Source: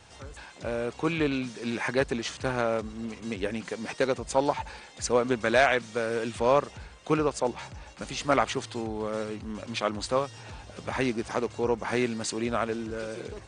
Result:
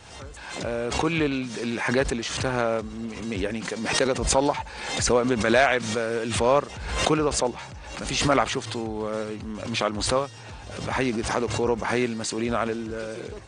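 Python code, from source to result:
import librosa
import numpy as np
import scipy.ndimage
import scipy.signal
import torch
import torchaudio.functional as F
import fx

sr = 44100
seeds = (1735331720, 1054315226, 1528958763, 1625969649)

y = fx.pre_swell(x, sr, db_per_s=51.0)
y = y * 10.0 ** (2.0 / 20.0)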